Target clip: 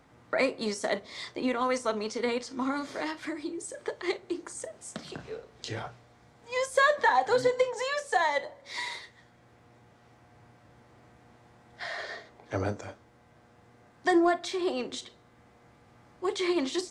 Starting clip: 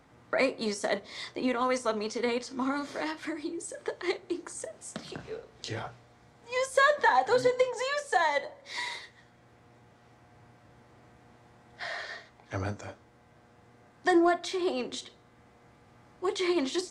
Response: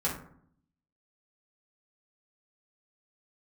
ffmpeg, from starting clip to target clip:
-filter_complex "[0:a]asettb=1/sr,asplit=3[link_01][link_02][link_03];[link_01]atrim=end=11.984[link_04];[link_02]atrim=start=11.98:end=12.81,asetpts=PTS-STARTPTS,afade=type=in:duration=0.004:curve=qsin,afade=type=out:start_time=0.826:duration=0.004:curve=qsin,equalizer=frequency=450:width=1:gain=7[link_05];[link_03]atrim=start=12.806[link_06];[link_04][link_05]acrossfade=duration=0.004:curve1=hsin:curve2=qsin[link_07];[link_07][link_06]acrossfade=duration=0.004:curve1=qsin:curve2=hsin"

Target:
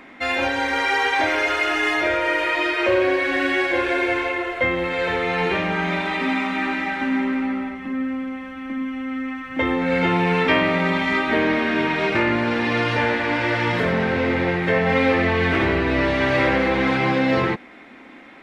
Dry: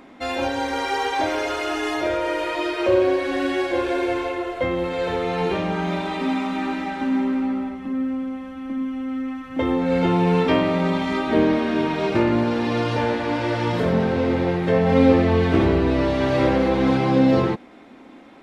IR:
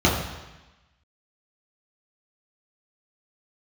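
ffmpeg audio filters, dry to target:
-filter_complex "[0:a]equalizer=frequency=2000:width_type=o:width=1.2:gain=11.5,acrossover=split=510[link_01][link_02];[link_01]alimiter=limit=-15dB:level=0:latency=1[link_03];[link_03][link_02]amix=inputs=2:normalize=0,volume=-1dB"

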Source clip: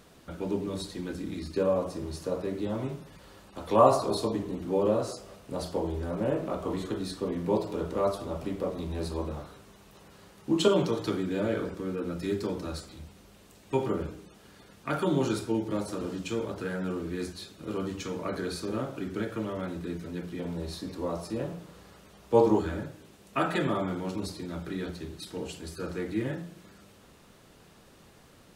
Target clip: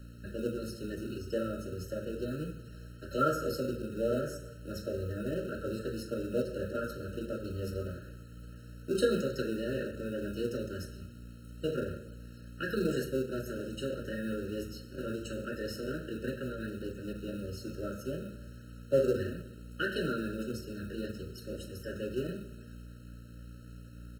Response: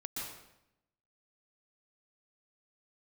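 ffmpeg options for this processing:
-filter_complex "[0:a]asplit=2[link_01][link_02];[1:a]atrim=start_sample=2205[link_03];[link_02][link_03]afir=irnorm=-1:irlink=0,volume=-13dB[link_04];[link_01][link_04]amix=inputs=2:normalize=0,aeval=exprs='val(0)+0.00891*(sin(2*PI*50*n/s)+sin(2*PI*2*50*n/s)/2+sin(2*PI*3*50*n/s)/3+sin(2*PI*4*50*n/s)/4+sin(2*PI*5*50*n/s)/5)':channel_layout=same,asetrate=52038,aresample=44100,flanger=delay=7.2:depth=3:regen=-68:speed=1.6:shape=sinusoidal,acrossover=split=280[link_05][link_06];[link_05]acrusher=samples=37:mix=1:aa=0.000001[link_07];[link_07][link_06]amix=inputs=2:normalize=0,afftfilt=real='re*eq(mod(floor(b*sr/1024/630),2),0)':imag='im*eq(mod(floor(b*sr/1024/630),2),0)':win_size=1024:overlap=0.75"

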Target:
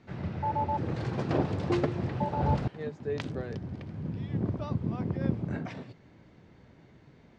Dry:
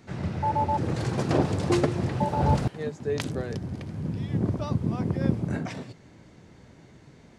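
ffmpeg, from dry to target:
ffmpeg -i in.wav -af "lowpass=3900,volume=-4.5dB" out.wav

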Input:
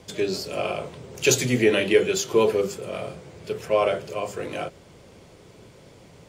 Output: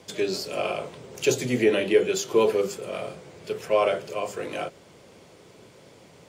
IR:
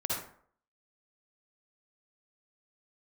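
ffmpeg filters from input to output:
-filter_complex "[0:a]highpass=frequency=200:poles=1,acrossover=split=930[link_01][link_02];[link_02]alimiter=limit=-17.5dB:level=0:latency=1:release=418[link_03];[link_01][link_03]amix=inputs=2:normalize=0"

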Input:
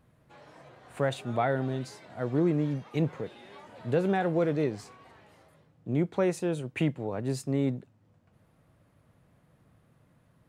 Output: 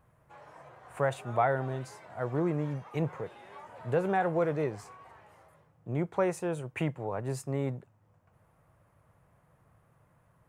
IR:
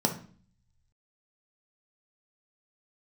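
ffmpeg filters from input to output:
-af "equalizer=frequency=250:width_type=o:width=1:gain=-9,equalizer=frequency=1000:width_type=o:width=1:gain=5,equalizer=frequency=4000:width_type=o:width=1:gain=-9"

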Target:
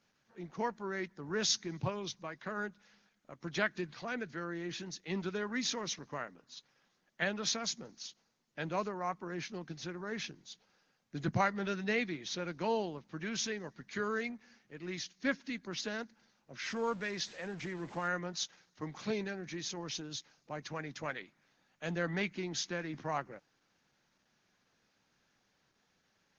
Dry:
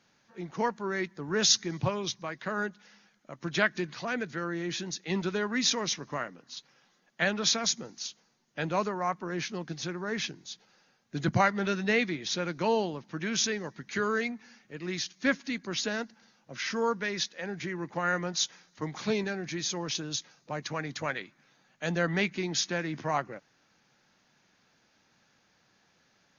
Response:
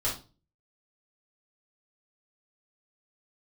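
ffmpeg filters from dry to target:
-filter_complex "[0:a]asettb=1/sr,asplit=3[link_01][link_02][link_03];[link_01]atrim=end=16.634[link_04];[link_02]atrim=start=16.63:end=18.08,asetpts=PTS-STARTPTS,afade=type=in:duration=0.004:curve=qsin,afade=type=out:start_time=1.446:duration=0.004:curve=qsin,aeval=exprs='val(0)+0.5*0.00944*sgn(val(0))':channel_layout=same[link_05];[link_03]atrim=start=18.076[link_06];[link_04][link_05]acrossfade=duration=0.004:curve1=hsin:curve2=qsin[link_07];[link_07][link_06]acrossfade=duration=0.004:curve1=qsin:curve2=hsin,aresample=22050,aresample=44100,volume=-6dB" -ar 48000 -c:a libopus -b:a 16k

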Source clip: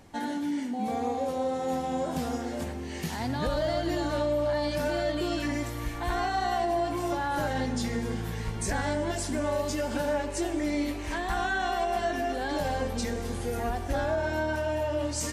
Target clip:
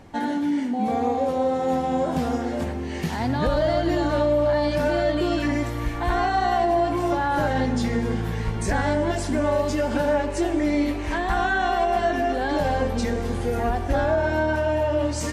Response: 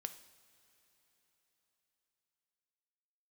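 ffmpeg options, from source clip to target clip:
-af "highshelf=frequency=4400:gain=-10.5,volume=7dB"

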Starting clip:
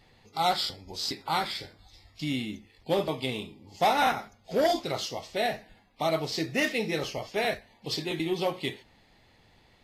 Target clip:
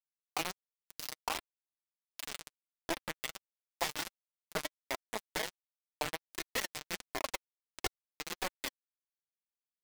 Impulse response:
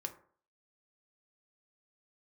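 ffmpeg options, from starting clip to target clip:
-filter_complex "[0:a]highpass=frequency=360:width=0.5412,highpass=frequency=360:width=1.3066,equalizer=frequency=940:width_type=q:width=4:gain=7,equalizer=frequency=1900:width_type=q:width=4:gain=7,equalizer=frequency=3900:width_type=q:width=4:gain=-9,lowpass=frequency=5600:width=0.5412,lowpass=frequency=5600:width=1.3066,acompressor=mode=upward:threshold=-35dB:ratio=2.5,asettb=1/sr,asplit=3[link_01][link_02][link_03];[link_01]atrim=end=3.444[link_04];[link_02]atrim=start=3.44:end=4.08,asetpts=PTS-STARTPTS,afade=type=in:duration=0.004:curve=qsin,afade=type=out:start_time=0.636:duration=0.004:curve=qsin,tiltshelf=frequency=930:gain=-7[link_05];[link_03]atrim=start=4.076[link_06];[link_04][link_05]acrossfade=duration=0.004:curve1=hsin:curve2=qsin[link_07];[link_07][link_06]acrossfade=duration=0.004:curve1=qsin:curve2=hsin,asettb=1/sr,asplit=3[link_08][link_09][link_10];[link_08]atrim=end=7.244[link_11];[link_09]atrim=start=7.24:end=8.06,asetpts=PTS-STARTPTS,afade=type=in:duration=0.004:curve=qsin,afade=type=out:start_time=0.816:duration=0.004:curve=qsin,aeval=exprs='0.126*sin(PI/2*7.08*val(0)/0.126)':channel_layout=same[link_12];[link_10]atrim=start=8.056[link_13];[link_11][link_12]acrossfade=duration=0.004:curve1=hsin:curve2=qsin[link_14];[link_14][link_13]acrossfade=duration=0.004:curve1=qsin:curve2=hsin,aeval=exprs='val(0)+0.00126*(sin(2*PI*50*n/s)+sin(2*PI*2*50*n/s)/2+sin(2*PI*3*50*n/s)/3+sin(2*PI*4*50*n/s)/4+sin(2*PI*5*50*n/s)/5)':channel_layout=same,acompressor=threshold=-34dB:ratio=10,asplit=4[link_15][link_16][link_17][link_18];[link_16]adelay=137,afreqshift=-36,volume=-20dB[link_19];[link_17]adelay=274,afreqshift=-72,volume=-27.3dB[link_20];[link_18]adelay=411,afreqshift=-108,volume=-34.7dB[link_21];[link_15][link_19][link_20][link_21]amix=inputs=4:normalize=0,acrusher=bits=4:mix=0:aa=0.000001,flanger=delay=2.8:depth=3.9:regen=20:speed=1.4:shape=sinusoidal,volume=4.5dB"

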